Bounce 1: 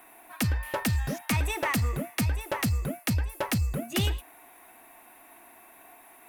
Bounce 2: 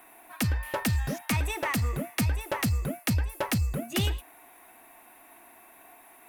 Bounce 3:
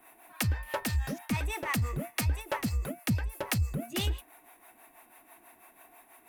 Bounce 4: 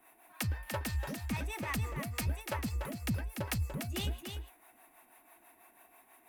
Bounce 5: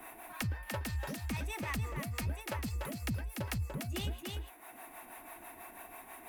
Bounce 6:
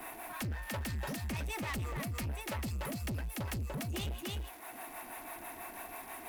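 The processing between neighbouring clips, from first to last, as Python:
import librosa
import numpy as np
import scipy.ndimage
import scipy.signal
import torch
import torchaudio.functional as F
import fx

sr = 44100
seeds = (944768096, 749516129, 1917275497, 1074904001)

y1 = fx.rider(x, sr, range_db=10, speed_s=0.5)
y2 = fx.harmonic_tremolo(y1, sr, hz=6.1, depth_pct=70, crossover_hz=430.0)
y3 = y2 + 10.0 ** (-6.5 / 20.0) * np.pad(y2, (int(292 * sr / 1000.0), 0))[:len(y2)]
y3 = y3 * librosa.db_to_amplitude(-5.5)
y4 = fx.band_squash(y3, sr, depth_pct=70)
y4 = y4 * librosa.db_to_amplitude(-1.5)
y5 = fx.dmg_crackle(y4, sr, seeds[0], per_s=510.0, level_db=-51.0)
y5 = 10.0 ** (-39.0 / 20.0) * np.tanh(y5 / 10.0 ** (-39.0 / 20.0))
y5 = y5 * librosa.db_to_amplitude(5.0)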